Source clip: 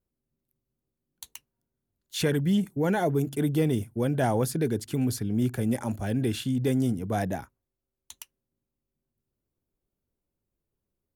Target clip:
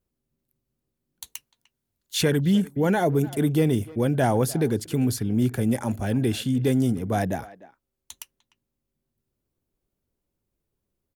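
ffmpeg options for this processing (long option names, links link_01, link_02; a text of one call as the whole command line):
ffmpeg -i in.wav -filter_complex "[0:a]asettb=1/sr,asplit=3[link_01][link_02][link_03];[link_01]atrim=end=1.274[link_04];[link_02]atrim=start=1.27:end=2.21,asetpts=PTS-STARTPTS,afade=type=in:duration=0.004:curve=qsin,afade=type=out:start_time=0.936:duration=0.004:curve=qsin,tiltshelf=frequency=1300:gain=-3.5[link_05];[link_03]atrim=start=2.206[link_06];[link_04][link_05]acrossfade=duration=0.004:curve1=hsin:curve2=qsin[link_07];[link_07][link_06]acrossfade=duration=0.004:curve1=qsin:curve2=hsin,asplit=2[link_08][link_09];[link_09]adelay=300,highpass=300,lowpass=3400,asoftclip=type=hard:threshold=-22.5dB,volume=-18dB[link_10];[link_08][link_10]amix=inputs=2:normalize=0,volume=3.5dB" out.wav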